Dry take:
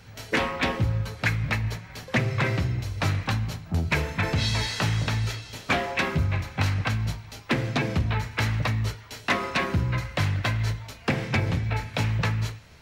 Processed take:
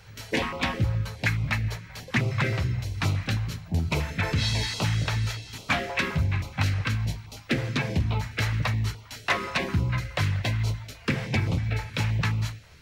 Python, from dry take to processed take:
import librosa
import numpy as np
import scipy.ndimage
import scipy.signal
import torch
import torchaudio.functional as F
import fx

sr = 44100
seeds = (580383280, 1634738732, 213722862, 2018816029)

y = fx.filter_held_notch(x, sr, hz=9.5, low_hz=240.0, high_hz=1700.0)